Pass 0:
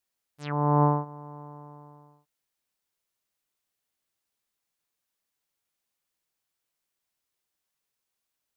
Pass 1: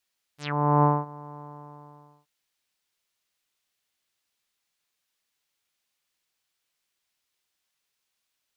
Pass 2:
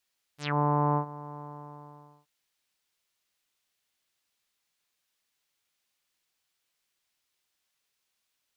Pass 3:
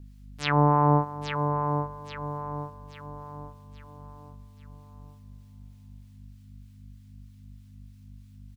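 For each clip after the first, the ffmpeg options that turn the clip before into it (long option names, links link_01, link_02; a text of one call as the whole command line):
ffmpeg -i in.wav -af "equalizer=frequency=3300:width=0.46:gain=7.5" out.wav
ffmpeg -i in.wav -af "alimiter=limit=-15.5dB:level=0:latency=1" out.wav
ffmpeg -i in.wav -filter_complex "[0:a]aeval=exprs='val(0)+0.00282*(sin(2*PI*50*n/s)+sin(2*PI*2*50*n/s)/2+sin(2*PI*3*50*n/s)/3+sin(2*PI*4*50*n/s)/4+sin(2*PI*5*50*n/s)/5)':channel_layout=same,acrossover=split=780[link_01][link_02];[link_01]aeval=exprs='val(0)*(1-0.5/2+0.5/2*cos(2*PI*3.2*n/s))':channel_layout=same[link_03];[link_02]aeval=exprs='val(0)*(1-0.5/2-0.5/2*cos(2*PI*3.2*n/s))':channel_layout=same[link_04];[link_03][link_04]amix=inputs=2:normalize=0,asplit=2[link_05][link_06];[link_06]aecho=0:1:829|1658|2487|3316|4145:0.473|0.199|0.0835|0.0351|0.0147[link_07];[link_05][link_07]amix=inputs=2:normalize=0,volume=7.5dB" out.wav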